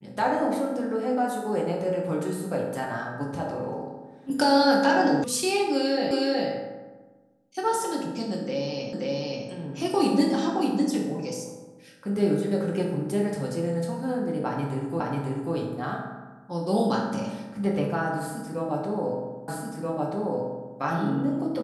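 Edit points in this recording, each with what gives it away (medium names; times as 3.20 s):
5.24 s: sound stops dead
6.11 s: repeat of the last 0.37 s
8.93 s: repeat of the last 0.53 s
15.00 s: repeat of the last 0.54 s
19.48 s: repeat of the last 1.28 s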